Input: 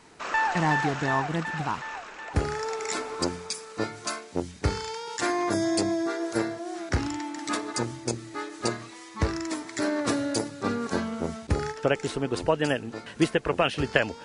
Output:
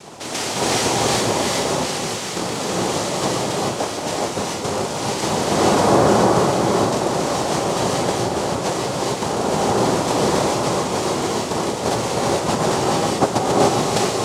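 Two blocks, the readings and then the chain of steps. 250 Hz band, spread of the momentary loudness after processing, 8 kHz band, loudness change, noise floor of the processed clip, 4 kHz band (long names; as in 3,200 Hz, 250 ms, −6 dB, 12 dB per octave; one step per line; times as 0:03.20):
+7.0 dB, 7 LU, +13.0 dB, +9.0 dB, −27 dBFS, +11.5 dB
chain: compressor on every frequency bin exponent 0.6
low shelf with overshoot 220 Hz −12 dB, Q 3
cochlear-implant simulation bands 2
reverb whose tail is shaped and stops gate 460 ms rising, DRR −4 dB
level −4.5 dB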